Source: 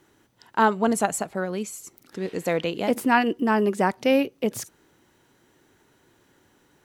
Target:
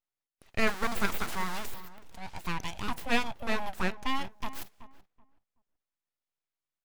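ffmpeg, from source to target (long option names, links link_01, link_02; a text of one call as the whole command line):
ffmpeg -i in.wav -filter_complex "[0:a]asettb=1/sr,asplit=3[link_01][link_02][link_03];[link_01]atrim=end=0.674[link_04];[link_02]atrim=start=0.67:end=1.74,asetpts=PTS-STARTPTS,afade=type=in:duration=0.004:curve=qsin,afade=type=out:start_time=1.066:duration=0.004:curve=qsin,aeval=exprs='val(0)+0.5*0.0631*sgn(val(0))':channel_layout=same[link_05];[link_03]atrim=start=1.736[link_06];[link_04][link_05]acrossfade=duration=0.004:curve1=hsin:curve2=qsin[link_07];[link_07][link_06]acrossfade=duration=0.004:curve1=qsin:curve2=hsin,highpass=440,agate=range=-26dB:threshold=-58dB:ratio=16:detection=peak,asettb=1/sr,asplit=3[link_08][link_09][link_10];[link_08]atrim=end=3.834[link_11];[link_09]atrim=start=3.83:end=4.26,asetpts=PTS-STARTPTS,afade=type=in:duration=0.004:curve=qsin,afade=type=out:start_time=0.426:duration=0.004:curve=qsin,lowpass=frequency=3200:poles=1[link_12];[link_10]atrim=start=4.256[link_13];[link_11][link_12]acrossfade=duration=0.004:curve1=hsin:curve2=qsin[link_14];[link_14][link_13]acrossfade=duration=0.004:curve1=qsin:curve2=hsin,aeval=exprs='abs(val(0))':channel_layout=same,asplit=2[link_15][link_16];[link_16]adelay=378,lowpass=frequency=1400:poles=1,volume=-14dB,asplit=2[link_17][link_18];[link_18]adelay=378,lowpass=frequency=1400:poles=1,volume=0.23,asplit=2[link_19][link_20];[link_20]adelay=378,lowpass=frequency=1400:poles=1,volume=0.23[link_21];[link_15][link_17][link_19][link_21]amix=inputs=4:normalize=0,volume=-4.5dB" out.wav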